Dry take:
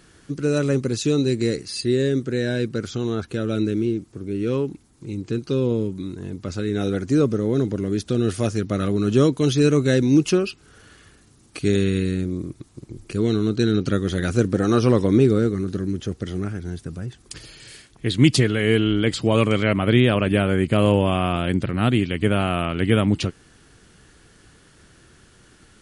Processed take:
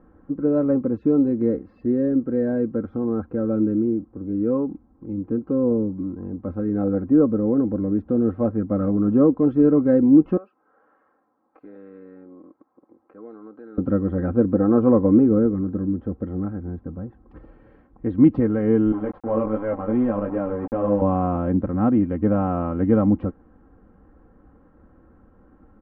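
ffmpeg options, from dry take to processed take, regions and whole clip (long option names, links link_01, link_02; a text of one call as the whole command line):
ffmpeg -i in.wav -filter_complex "[0:a]asettb=1/sr,asplit=3[link_01][link_02][link_03];[link_01]atrim=end=10.374[link_04];[link_02]atrim=start=10.37:end=13.78,asetpts=PTS-STARTPTS,afade=type=in:duration=0.004:curve=qsin,afade=type=out:start_time=3.406:duration=0.004:curve=qsin,highpass=710,equalizer=frequency=3000:width=1.2:gain=-6,acompressor=threshold=-42dB:ratio=2:attack=3.2:release=140:knee=1:detection=peak[link_05];[link_03]atrim=start=13.776[link_06];[link_04][link_05]acrossfade=duration=0.004:curve1=hsin:curve2=qsin[link_07];[link_07][link_06]acrossfade=duration=0.004:curve1=qsin:curve2=hsin,asettb=1/sr,asplit=3[link_08][link_09][link_10];[link_08]atrim=end=18.924[link_11];[link_09]atrim=start=18.92:end=21.02,asetpts=PTS-STARTPTS,afade=type=in:duration=0.004:curve=qsin,afade=type=out:start_time=2.096:duration=0.004:curve=qsin,flanger=delay=16.5:depth=3:speed=2.7,highpass=frequency=250:poles=1,aeval=exprs='val(0)*gte(abs(val(0)),0.0398)':channel_layout=same[link_12];[link_10]atrim=start=21.016[link_13];[link_11][link_12]acrossfade=duration=0.004:curve1=hsin:curve2=qsin[link_14];[link_14][link_13]acrossfade=duration=0.004:curve1=qsin:curve2=hsin,lowpass=frequency=1100:width=0.5412,lowpass=frequency=1100:width=1.3066,aecho=1:1:3.8:0.7" out.wav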